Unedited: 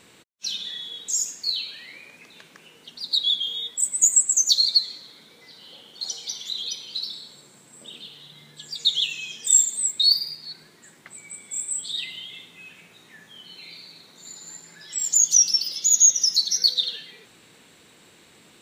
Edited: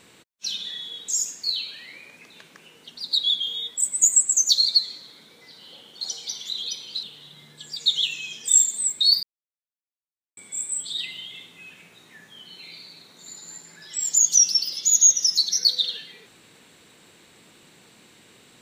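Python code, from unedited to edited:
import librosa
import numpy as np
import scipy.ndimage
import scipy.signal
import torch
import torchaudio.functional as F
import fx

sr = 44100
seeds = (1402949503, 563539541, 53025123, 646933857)

y = fx.edit(x, sr, fx.cut(start_s=7.03, length_s=0.99),
    fx.silence(start_s=10.22, length_s=1.14), tone=tone)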